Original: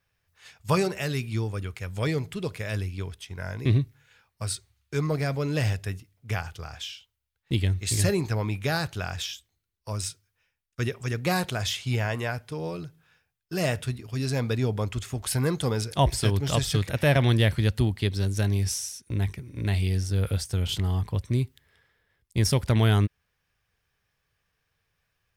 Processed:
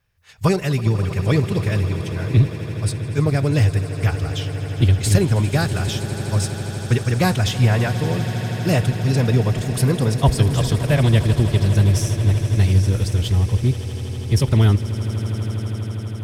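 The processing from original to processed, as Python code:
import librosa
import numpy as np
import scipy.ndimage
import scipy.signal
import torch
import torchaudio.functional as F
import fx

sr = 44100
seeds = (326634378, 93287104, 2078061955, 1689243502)

p1 = fx.low_shelf(x, sr, hz=210.0, db=7.0)
p2 = fx.rider(p1, sr, range_db=3, speed_s=2.0)
p3 = fx.stretch_vocoder(p2, sr, factor=0.64)
p4 = fx.cheby_harmonics(p3, sr, harmonics=(2, 4), levels_db=(-16, -36), full_scale_db=-8.0)
p5 = p4 + fx.echo_swell(p4, sr, ms=81, loudest=8, wet_db=-17.0, dry=0)
y = p5 * 10.0 ** (4.0 / 20.0)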